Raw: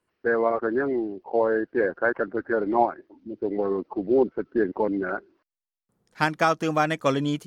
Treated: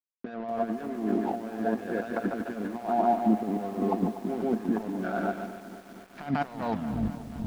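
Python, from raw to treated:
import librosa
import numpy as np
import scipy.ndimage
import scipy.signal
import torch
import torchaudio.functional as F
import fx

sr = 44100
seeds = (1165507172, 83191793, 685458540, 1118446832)

y = fx.tape_stop_end(x, sr, length_s=1.3)
y = fx.echo_feedback(y, sr, ms=144, feedback_pct=49, wet_db=-10.5)
y = fx.over_compress(y, sr, threshold_db=-33.0, ratio=-1.0)
y = np.sign(y) * np.maximum(np.abs(y) - 10.0 ** (-41.5 / 20.0), 0.0)
y = scipy.signal.sosfilt(scipy.signal.butter(2, 3900.0, 'lowpass', fs=sr, output='sos'), y)
y = fx.small_body(y, sr, hz=(220.0, 690.0), ring_ms=65, db=16)
y = fx.echo_crushed(y, sr, ms=242, feedback_pct=80, bits=7, wet_db=-14.0)
y = y * 10.0 ** (-2.5 / 20.0)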